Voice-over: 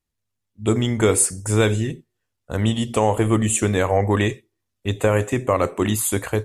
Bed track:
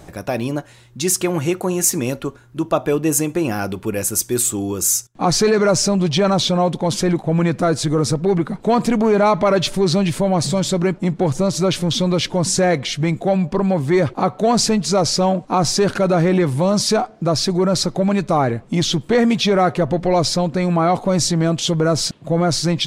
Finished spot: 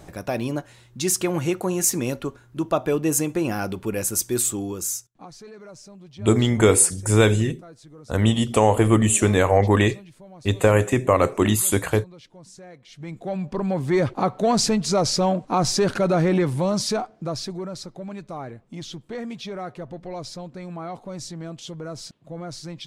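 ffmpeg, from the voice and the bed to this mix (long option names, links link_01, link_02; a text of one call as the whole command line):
ffmpeg -i stem1.wav -i stem2.wav -filter_complex "[0:a]adelay=5600,volume=1.5dB[link_01];[1:a]volume=20dB,afade=type=out:start_time=4.46:duration=0.82:silence=0.0630957,afade=type=in:start_time=12.85:duration=1.19:silence=0.0630957,afade=type=out:start_time=16.35:duration=1.41:silence=0.211349[link_02];[link_01][link_02]amix=inputs=2:normalize=0" out.wav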